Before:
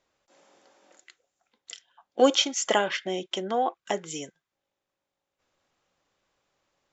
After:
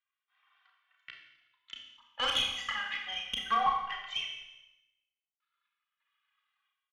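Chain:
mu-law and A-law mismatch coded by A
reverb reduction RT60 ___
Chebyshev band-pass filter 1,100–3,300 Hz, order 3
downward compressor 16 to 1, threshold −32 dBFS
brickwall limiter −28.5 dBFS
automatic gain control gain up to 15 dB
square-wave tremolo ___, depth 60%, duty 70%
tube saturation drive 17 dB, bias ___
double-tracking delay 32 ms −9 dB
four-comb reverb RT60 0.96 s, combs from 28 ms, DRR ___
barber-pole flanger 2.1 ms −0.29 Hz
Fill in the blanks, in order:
1.9 s, 1 Hz, 0.35, 2 dB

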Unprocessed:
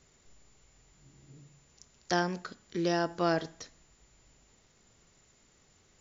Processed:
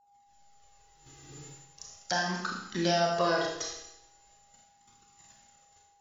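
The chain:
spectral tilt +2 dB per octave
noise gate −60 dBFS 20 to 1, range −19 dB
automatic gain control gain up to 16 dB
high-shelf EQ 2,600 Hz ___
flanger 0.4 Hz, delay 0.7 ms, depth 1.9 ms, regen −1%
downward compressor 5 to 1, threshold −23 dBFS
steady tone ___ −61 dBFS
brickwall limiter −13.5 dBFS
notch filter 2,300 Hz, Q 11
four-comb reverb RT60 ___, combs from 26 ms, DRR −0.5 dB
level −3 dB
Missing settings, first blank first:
−3.5 dB, 810 Hz, 0.82 s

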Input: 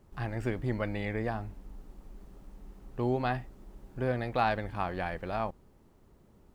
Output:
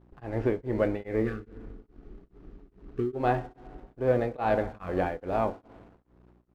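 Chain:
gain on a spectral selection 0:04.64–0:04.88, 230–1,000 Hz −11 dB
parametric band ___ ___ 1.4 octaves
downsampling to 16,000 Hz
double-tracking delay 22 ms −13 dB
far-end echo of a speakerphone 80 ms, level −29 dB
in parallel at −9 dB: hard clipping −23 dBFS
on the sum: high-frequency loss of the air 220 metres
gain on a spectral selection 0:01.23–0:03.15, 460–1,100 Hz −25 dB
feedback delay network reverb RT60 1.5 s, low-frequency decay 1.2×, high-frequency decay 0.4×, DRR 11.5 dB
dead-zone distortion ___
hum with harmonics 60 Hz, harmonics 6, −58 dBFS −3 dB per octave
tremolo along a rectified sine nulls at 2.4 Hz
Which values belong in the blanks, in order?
440 Hz, +10 dB, −52 dBFS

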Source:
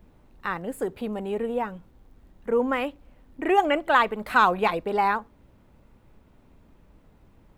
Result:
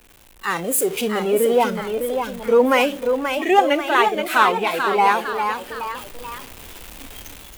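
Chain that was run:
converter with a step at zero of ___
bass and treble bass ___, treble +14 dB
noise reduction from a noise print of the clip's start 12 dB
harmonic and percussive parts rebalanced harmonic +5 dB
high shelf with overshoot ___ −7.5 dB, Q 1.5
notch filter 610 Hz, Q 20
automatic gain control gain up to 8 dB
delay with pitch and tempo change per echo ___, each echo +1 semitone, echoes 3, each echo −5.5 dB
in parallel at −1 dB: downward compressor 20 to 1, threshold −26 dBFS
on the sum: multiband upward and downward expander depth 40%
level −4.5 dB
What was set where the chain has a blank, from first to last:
−27.5 dBFS, −10 dB, 3,700 Hz, 684 ms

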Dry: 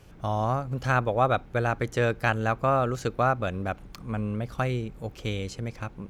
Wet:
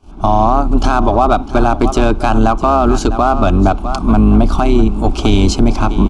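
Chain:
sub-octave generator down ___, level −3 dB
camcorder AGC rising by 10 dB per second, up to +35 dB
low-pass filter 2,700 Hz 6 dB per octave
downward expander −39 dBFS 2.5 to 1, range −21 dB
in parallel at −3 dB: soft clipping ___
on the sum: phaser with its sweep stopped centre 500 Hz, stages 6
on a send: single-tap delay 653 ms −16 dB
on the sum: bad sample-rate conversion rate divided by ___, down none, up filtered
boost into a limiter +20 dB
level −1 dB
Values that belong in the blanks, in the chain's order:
2 octaves, −27 dBFS, 2×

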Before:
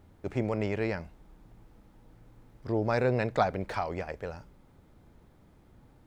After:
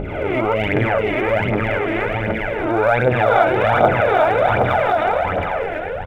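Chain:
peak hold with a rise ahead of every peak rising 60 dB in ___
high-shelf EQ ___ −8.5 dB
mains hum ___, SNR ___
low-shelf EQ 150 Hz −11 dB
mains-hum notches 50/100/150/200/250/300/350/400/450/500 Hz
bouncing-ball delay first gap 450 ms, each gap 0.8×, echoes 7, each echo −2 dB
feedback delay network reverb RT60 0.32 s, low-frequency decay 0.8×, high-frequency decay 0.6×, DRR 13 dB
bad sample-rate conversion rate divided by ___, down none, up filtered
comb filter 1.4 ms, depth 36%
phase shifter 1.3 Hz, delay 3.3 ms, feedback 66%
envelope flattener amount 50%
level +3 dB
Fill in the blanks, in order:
0.78 s, 6,100 Hz, 50 Hz, 12 dB, 6×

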